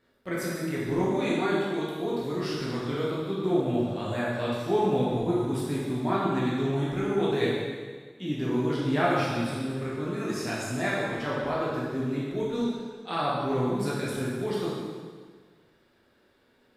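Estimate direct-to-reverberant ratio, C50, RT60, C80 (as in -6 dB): -7.5 dB, -1.5 dB, 1.6 s, 1.0 dB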